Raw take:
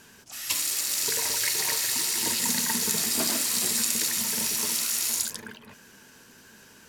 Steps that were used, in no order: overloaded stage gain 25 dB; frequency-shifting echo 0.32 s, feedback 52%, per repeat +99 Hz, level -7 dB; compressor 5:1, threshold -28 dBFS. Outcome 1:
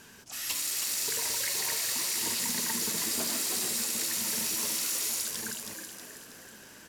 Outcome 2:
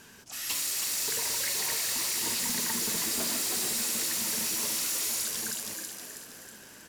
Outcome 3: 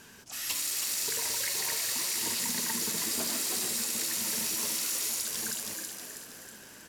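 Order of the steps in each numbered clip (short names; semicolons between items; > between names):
compressor > frequency-shifting echo > overloaded stage; frequency-shifting echo > overloaded stage > compressor; frequency-shifting echo > compressor > overloaded stage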